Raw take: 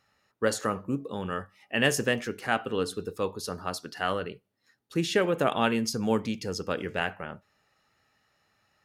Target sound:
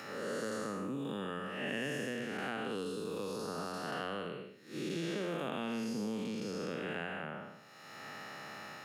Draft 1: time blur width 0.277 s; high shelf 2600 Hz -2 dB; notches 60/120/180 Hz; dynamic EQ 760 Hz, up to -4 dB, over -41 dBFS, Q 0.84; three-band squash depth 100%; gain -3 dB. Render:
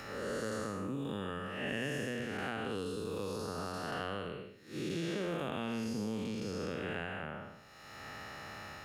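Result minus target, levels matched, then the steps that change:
125 Hz band +3.0 dB
add after time blur: HPF 140 Hz 24 dB/oct

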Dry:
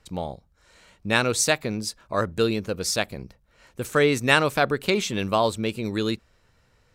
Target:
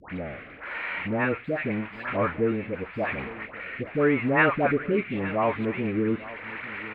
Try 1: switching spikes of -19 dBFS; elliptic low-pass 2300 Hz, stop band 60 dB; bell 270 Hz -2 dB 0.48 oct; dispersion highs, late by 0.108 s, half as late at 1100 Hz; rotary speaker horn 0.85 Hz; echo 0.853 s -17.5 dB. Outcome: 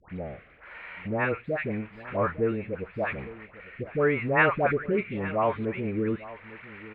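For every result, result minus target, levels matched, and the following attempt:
switching spikes: distortion -10 dB; 250 Hz band -3.0 dB
switching spikes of -8.5 dBFS; elliptic low-pass 2300 Hz, stop band 60 dB; bell 270 Hz -2 dB 0.48 oct; dispersion highs, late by 0.108 s, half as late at 1100 Hz; rotary speaker horn 0.85 Hz; echo 0.853 s -17.5 dB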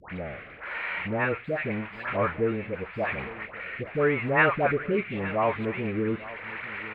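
250 Hz band -3.0 dB
switching spikes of -8.5 dBFS; elliptic low-pass 2300 Hz, stop band 60 dB; bell 270 Hz +6 dB 0.48 oct; dispersion highs, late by 0.108 s, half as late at 1100 Hz; rotary speaker horn 0.85 Hz; echo 0.853 s -17.5 dB

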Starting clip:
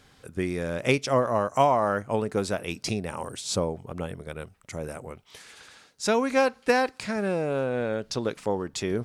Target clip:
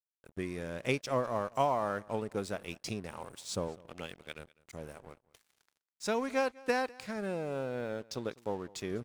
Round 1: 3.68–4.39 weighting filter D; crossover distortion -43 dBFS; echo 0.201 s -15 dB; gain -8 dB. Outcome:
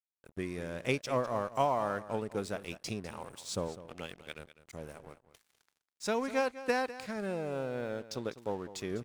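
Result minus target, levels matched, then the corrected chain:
echo-to-direct +8 dB
3.68–4.39 weighting filter D; crossover distortion -43 dBFS; echo 0.201 s -23 dB; gain -8 dB

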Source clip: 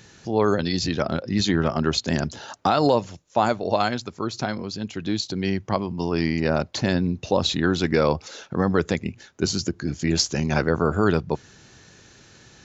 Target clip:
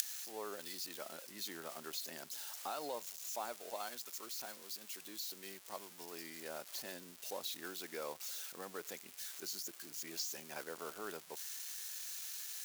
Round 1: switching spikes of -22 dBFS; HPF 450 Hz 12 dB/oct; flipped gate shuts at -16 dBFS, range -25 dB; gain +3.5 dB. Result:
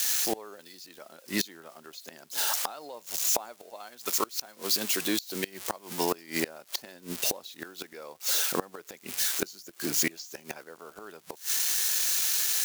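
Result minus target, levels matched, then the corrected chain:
switching spikes: distortion -6 dB
switching spikes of -15.5 dBFS; HPF 450 Hz 12 dB/oct; flipped gate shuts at -16 dBFS, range -25 dB; gain +3.5 dB

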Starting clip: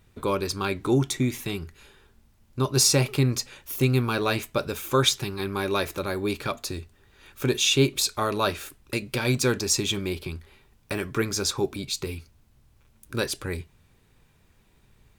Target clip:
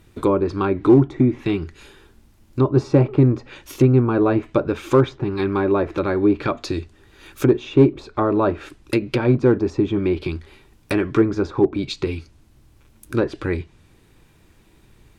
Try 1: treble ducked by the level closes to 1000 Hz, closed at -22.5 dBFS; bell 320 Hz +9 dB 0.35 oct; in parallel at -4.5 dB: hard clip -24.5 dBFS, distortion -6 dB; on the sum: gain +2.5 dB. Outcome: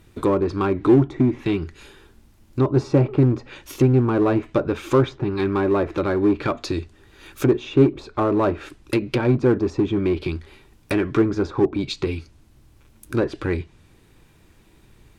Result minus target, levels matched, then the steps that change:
hard clip: distortion +12 dB
change: hard clip -14.5 dBFS, distortion -18 dB

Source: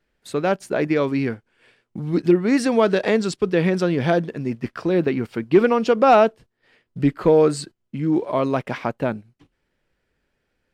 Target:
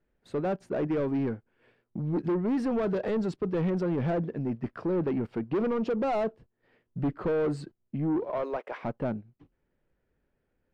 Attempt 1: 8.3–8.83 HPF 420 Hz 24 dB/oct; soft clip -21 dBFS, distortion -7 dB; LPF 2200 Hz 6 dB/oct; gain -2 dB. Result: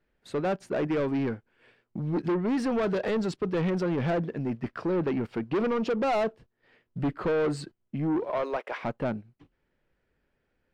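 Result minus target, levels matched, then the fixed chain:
2000 Hz band +4.5 dB
8.3–8.83 HPF 420 Hz 24 dB/oct; soft clip -21 dBFS, distortion -7 dB; LPF 770 Hz 6 dB/oct; gain -2 dB

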